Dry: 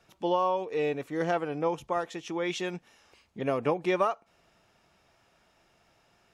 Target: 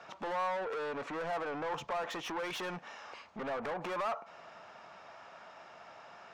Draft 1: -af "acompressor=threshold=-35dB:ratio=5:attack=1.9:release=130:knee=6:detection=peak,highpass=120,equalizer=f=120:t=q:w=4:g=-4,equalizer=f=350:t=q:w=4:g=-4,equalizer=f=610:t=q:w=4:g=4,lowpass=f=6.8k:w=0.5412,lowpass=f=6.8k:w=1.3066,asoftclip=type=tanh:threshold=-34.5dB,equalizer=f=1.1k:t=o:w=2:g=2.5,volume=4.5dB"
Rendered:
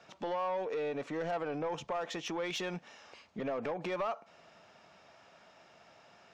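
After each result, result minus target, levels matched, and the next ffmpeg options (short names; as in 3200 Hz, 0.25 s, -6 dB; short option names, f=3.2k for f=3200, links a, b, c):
soft clip: distortion -9 dB; 1000 Hz band -3.0 dB
-af "acompressor=threshold=-35dB:ratio=5:attack=1.9:release=130:knee=6:detection=peak,highpass=120,equalizer=f=120:t=q:w=4:g=-4,equalizer=f=350:t=q:w=4:g=-4,equalizer=f=610:t=q:w=4:g=4,lowpass=f=6.8k:w=0.5412,lowpass=f=6.8k:w=1.3066,asoftclip=type=tanh:threshold=-46dB,equalizer=f=1.1k:t=o:w=2:g=2.5,volume=4.5dB"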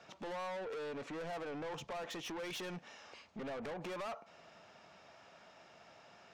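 1000 Hz band -3.5 dB
-af "acompressor=threshold=-35dB:ratio=5:attack=1.9:release=130:knee=6:detection=peak,highpass=120,equalizer=f=120:t=q:w=4:g=-4,equalizer=f=350:t=q:w=4:g=-4,equalizer=f=610:t=q:w=4:g=4,lowpass=f=6.8k:w=0.5412,lowpass=f=6.8k:w=1.3066,asoftclip=type=tanh:threshold=-46dB,equalizer=f=1.1k:t=o:w=2:g=13,volume=4.5dB"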